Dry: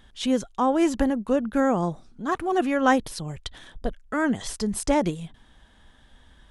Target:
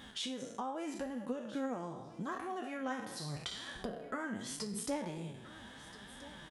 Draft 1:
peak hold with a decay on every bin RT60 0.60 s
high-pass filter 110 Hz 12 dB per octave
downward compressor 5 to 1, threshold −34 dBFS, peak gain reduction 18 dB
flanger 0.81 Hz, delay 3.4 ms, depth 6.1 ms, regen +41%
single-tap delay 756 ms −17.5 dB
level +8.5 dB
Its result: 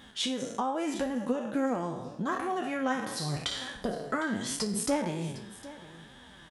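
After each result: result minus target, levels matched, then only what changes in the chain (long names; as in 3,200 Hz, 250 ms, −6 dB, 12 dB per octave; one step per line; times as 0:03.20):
downward compressor: peak gain reduction −9 dB; echo 571 ms early
change: downward compressor 5 to 1, threshold −45 dBFS, peak gain reduction 27 dB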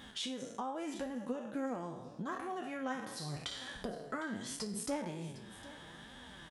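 echo 571 ms early
change: single-tap delay 1,327 ms −17.5 dB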